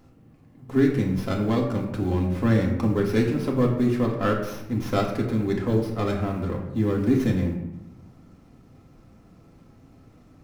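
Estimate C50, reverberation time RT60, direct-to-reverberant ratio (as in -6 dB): 5.5 dB, 0.95 s, -1.5 dB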